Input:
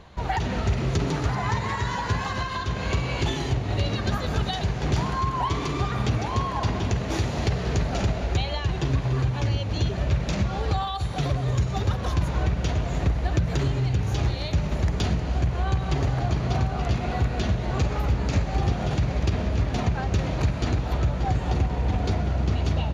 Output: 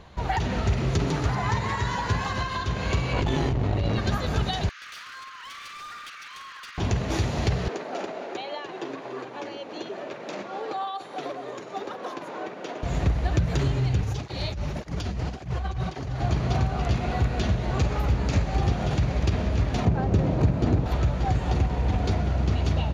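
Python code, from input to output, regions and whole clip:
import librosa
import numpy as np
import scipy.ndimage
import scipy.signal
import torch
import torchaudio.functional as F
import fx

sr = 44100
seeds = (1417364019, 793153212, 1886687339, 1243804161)

y = fx.chain(x, sr, fx.high_shelf(hz=2300.0, db=-10.5),
    fx.tube_stage(drive_db=18.0, bias=0.6),
    fx.env_flatten(amount_pct=100), at=(3.13, 3.99))
y = fx.chain(y, sr, fx.cheby1_bandpass(low_hz=1200.0, high_hz=6700.0, order=5),
    fx.high_shelf(hz=5000.0, db=-7.5),
    fx.clip_hard(threshold_db=-37.5), at=(4.69, 6.78))
y = fx.chain(y, sr, fx.highpass(hz=300.0, slope=24),
    fx.high_shelf(hz=2500.0, db=-11.0), at=(7.68, 12.83))
y = fx.chain(y, sr, fx.peak_eq(hz=5300.0, db=3.5, octaves=0.32),
    fx.over_compress(threshold_db=-27.0, ratio=-1.0),
    fx.flanger_cancel(hz=1.8, depth_ms=8.0), at=(14.01, 16.2))
y = fx.chain(y, sr, fx.highpass(hz=170.0, slope=6),
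    fx.tilt_shelf(db=8.5, hz=900.0), at=(19.85, 20.86))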